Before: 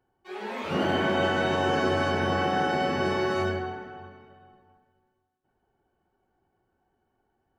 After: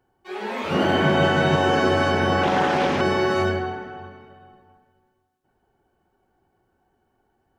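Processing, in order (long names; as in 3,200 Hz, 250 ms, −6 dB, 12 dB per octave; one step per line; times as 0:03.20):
0:00.99–0:01.56: parametric band 150 Hz +14.5 dB 0.21 octaves
0:02.43–0:03.01: highs frequency-modulated by the lows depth 0.42 ms
level +5.5 dB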